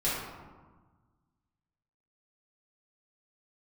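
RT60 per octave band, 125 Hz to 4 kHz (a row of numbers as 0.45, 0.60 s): 2.1, 1.8, 1.3, 1.4, 1.0, 0.65 s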